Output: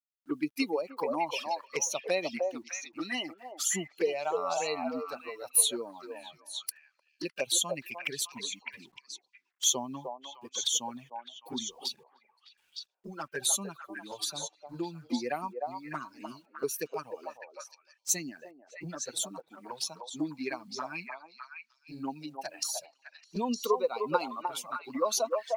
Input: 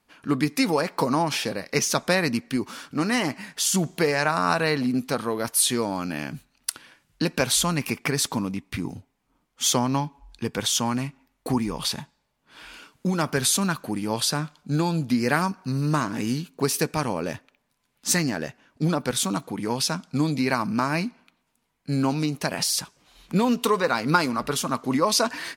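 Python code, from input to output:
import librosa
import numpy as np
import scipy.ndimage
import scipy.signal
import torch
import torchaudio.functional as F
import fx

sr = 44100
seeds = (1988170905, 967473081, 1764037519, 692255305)

p1 = fx.bin_expand(x, sr, power=2.0)
p2 = scipy.signal.sosfilt(scipy.signal.butter(2, 340.0, 'highpass', fs=sr, output='sos'), p1)
p3 = fx.high_shelf(p2, sr, hz=5000.0, db=3.5)
p4 = fx.env_flanger(p3, sr, rest_ms=7.9, full_db=-27.5)
p5 = fx.quant_dither(p4, sr, seeds[0], bits=12, dither='none')
y = p5 + fx.echo_stepped(p5, sr, ms=304, hz=660.0, octaves=1.4, feedback_pct=70, wet_db=-0.5, dry=0)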